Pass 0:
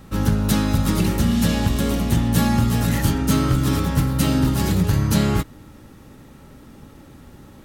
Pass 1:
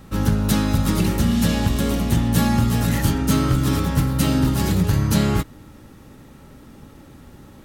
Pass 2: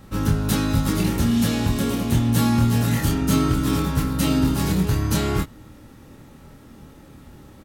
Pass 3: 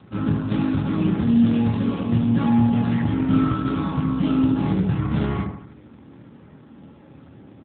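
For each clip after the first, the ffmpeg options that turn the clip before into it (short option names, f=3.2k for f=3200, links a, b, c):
-af anull
-filter_complex "[0:a]asplit=2[a][b];[b]adelay=26,volume=-4dB[c];[a][c]amix=inputs=2:normalize=0,volume=-2.5dB"
-filter_complex "[0:a]acrossover=split=1900[a][b];[a]aecho=1:1:73|146|219|292|365|438:0.596|0.286|0.137|0.0659|0.0316|0.0152[c];[b]asoftclip=type=tanh:threshold=-27dB[d];[c][d]amix=inputs=2:normalize=0" -ar 8000 -c:a libopencore_amrnb -b:a 7400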